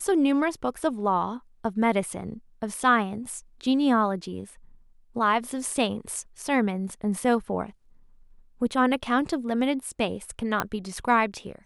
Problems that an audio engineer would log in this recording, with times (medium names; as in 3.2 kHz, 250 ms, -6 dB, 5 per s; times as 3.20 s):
10.60 s: pop -10 dBFS